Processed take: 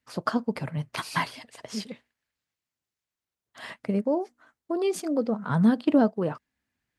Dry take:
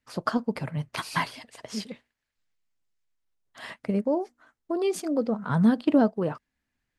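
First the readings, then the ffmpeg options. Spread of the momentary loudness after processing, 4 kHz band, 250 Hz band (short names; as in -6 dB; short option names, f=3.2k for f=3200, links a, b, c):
20 LU, 0.0 dB, 0.0 dB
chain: -af "highpass=59"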